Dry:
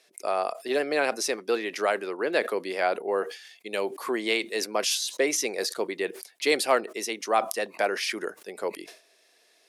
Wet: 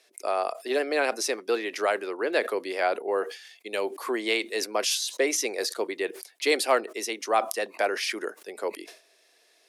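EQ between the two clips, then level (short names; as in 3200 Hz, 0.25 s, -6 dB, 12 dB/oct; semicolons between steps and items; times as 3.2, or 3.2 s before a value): HPF 240 Hz 24 dB/oct; 0.0 dB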